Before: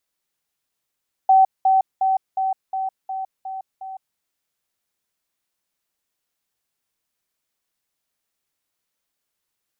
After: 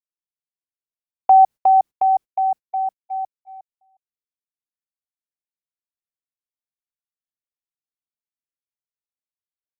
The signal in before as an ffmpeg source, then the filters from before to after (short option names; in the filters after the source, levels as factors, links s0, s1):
-f lavfi -i "aevalsrc='pow(10,(-9.5-3*floor(t/0.36))/20)*sin(2*PI*765*t)*clip(min(mod(t,0.36),0.16-mod(t,0.36))/0.005,0,1)':d=2.88:s=44100"
-af "lowshelf=f=500:g=11.5,agate=range=0.0316:threshold=0.0501:ratio=16:detection=peak"